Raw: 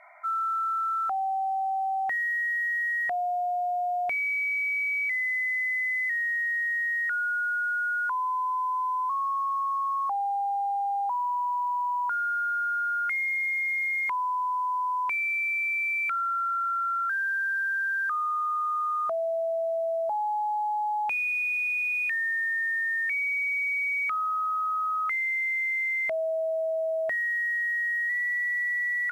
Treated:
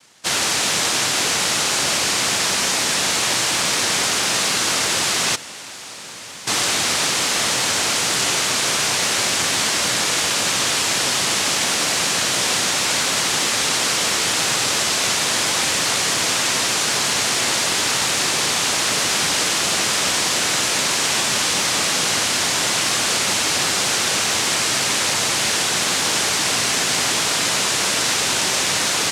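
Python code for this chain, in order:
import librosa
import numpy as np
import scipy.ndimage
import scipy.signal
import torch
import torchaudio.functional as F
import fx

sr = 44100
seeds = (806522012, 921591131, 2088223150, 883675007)

y = fx.band_shelf(x, sr, hz=2000.0, db=-10.0, octaves=1.7, at=(5.35, 6.47))
y = fx.cheby_harmonics(y, sr, harmonics=(3,), levels_db=(-14,), full_scale_db=-24.0)
y = fx.noise_vocoder(y, sr, seeds[0], bands=1)
y = y * librosa.db_to_amplitude(9.0)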